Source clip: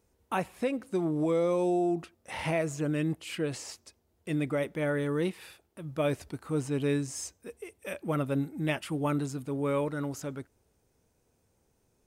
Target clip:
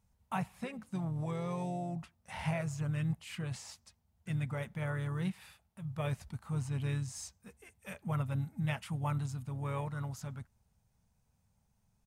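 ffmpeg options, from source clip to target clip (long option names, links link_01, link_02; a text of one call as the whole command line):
ffmpeg -i in.wav -filter_complex "[0:a]firequalizer=gain_entry='entry(210,0);entry(300,-23);entry(810,-4);entry(1400,-7)':delay=0.05:min_phase=1,asplit=3[link_01][link_02][link_03];[link_02]asetrate=33038,aresample=44100,atempo=1.33484,volume=-11dB[link_04];[link_03]asetrate=37084,aresample=44100,atempo=1.18921,volume=-15dB[link_05];[link_01][link_04][link_05]amix=inputs=3:normalize=0" out.wav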